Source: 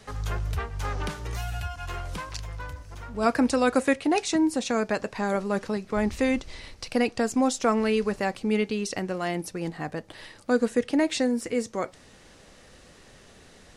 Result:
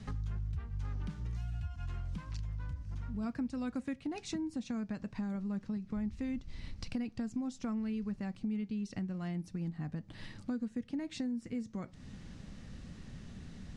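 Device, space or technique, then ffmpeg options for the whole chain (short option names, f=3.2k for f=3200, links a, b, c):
jukebox: -af "lowpass=7.2k,lowshelf=f=300:t=q:w=1.5:g=13.5,acompressor=threshold=-32dB:ratio=4,volume=-6dB"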